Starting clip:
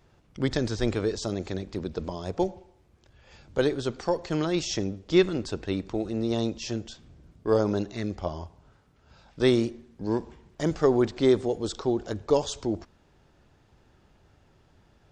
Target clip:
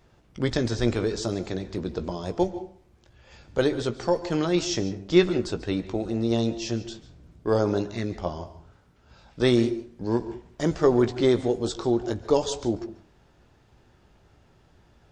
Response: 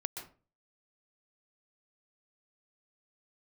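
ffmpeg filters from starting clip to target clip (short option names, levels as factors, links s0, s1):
-filter_complex "[0:a]asplit=2[s0][s1];[1:a]atrim=start_sample=2205,adelay=17[s2];[s1][s2]afir=irnorm=-1:irlink=0,volume=0.355[s3];[s0][s3]amix=inputs=2:normalize=0,volume=1.19"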